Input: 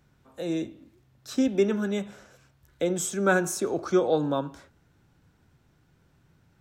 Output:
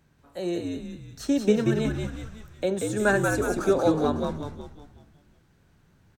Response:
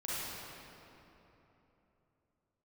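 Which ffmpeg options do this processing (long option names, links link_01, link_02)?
-filter_complex "[0:a]deesser=0.65,asetrate=47187,aresample=44100,asplit=2[link_01][link_02];[link_02]asplit=7[link_03][link_04][link_05][link_06][link_07][link_08][link_09];[link_03]adelay=184,afreqshift=-74,volume=-3.5dB[link_10];[link_04]adelay=368,afreqshift=-148,volume=-9.5dB[link_11];[link_05]adelay=552,afreqshift=-222,volume=-15.5dB[link_12];[link_06]adelay=736,afreqshift=-296,volume=-21.6dB[link_13];[link_07]adelay=920,afreqshift=-370,volume=-27.6dB[link_14];[link_08]adelay=1104,afreqshift=-444,volume=-33.6dB[link_15];[link_09]adelay=1288,afreqshift=-518,volume=-39.6dB[link_16];[link_10][link_11][link_12][link_13][link_14][link_15][link_16]amix=inputs=7:normalize=0[link_17];[link_01][link_17]amix=inputs=2:normalize=0"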